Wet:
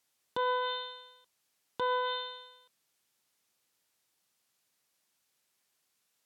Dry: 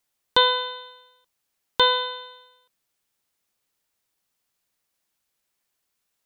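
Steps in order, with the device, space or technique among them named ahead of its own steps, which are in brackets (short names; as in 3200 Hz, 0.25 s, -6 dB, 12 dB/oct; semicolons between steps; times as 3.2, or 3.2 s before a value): treble ducked by the level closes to 1400 Hz, closed at -19 dBFS; broadcast voice chain (HPF 97 Hz; de-esser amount 95%; compressor 3:1, threshold -26 dBFS, peak gain reduction 6.5 dB; bell 5300 Hz +2.5 dB 2.1 oct; limiter -22.5 dBFS, peak gain reduction 9 dB)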